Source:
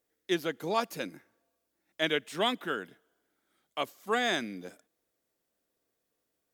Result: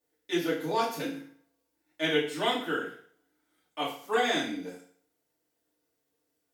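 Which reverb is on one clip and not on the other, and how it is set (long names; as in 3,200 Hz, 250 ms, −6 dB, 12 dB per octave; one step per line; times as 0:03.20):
feedback delay network reverb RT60 0.51 s, low-frequency decay 0.95×, high-frequency decay 1×, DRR −9 dB
level −8 dB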